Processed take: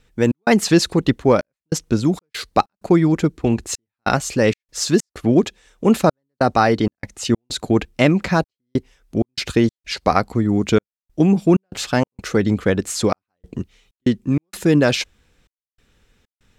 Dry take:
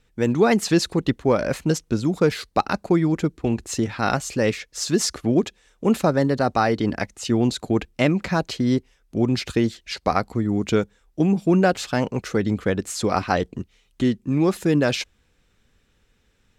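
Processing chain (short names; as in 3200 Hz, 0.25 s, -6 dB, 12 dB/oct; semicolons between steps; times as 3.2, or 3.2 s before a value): step gate "xx.xxxxxx..xxx." 96 bpm -60 dB; gain +4.5 dB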